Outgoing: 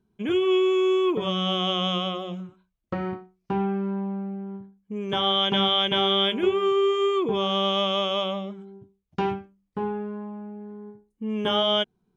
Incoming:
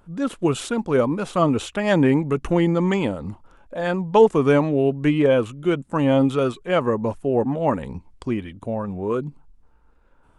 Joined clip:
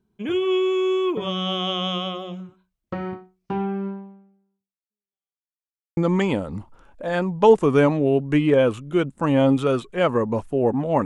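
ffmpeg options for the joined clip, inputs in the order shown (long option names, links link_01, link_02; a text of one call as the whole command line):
ffmpeg -i cue0.wav -i cue1.wav -filter_complex "[0:a]apad=whole_dur=11.05,atrim=end=11.05,asplit=2[link_01][link_02];[link_01]atrim=end=5.51,asetpts=PTS-STARTPTS,afade=type=out:start_time=3.87:duration=1.64:curve=exp[link_03];[link_02]atrim=start=5.51:end=5.97,asetpts=PTS-STARTPTS,volume=0[link_04];[1:a]atrim=start=2.69:end=7.77,asetpts=PTS-STARTPTS,afade=type=in:duration=0.004:curve=hsin[link_05];[link_03][link_04][link_05]concat=n=3:v=0:a=1" out.wav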